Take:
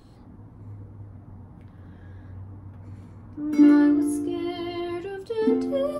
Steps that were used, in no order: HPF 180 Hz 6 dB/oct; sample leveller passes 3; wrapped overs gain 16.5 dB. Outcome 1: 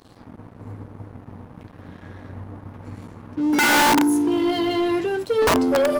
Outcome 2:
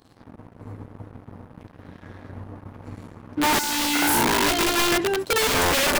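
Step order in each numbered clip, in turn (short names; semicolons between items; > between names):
wrapped overs > HPF > sample leveller; HPF > sample leveller > wrapped overs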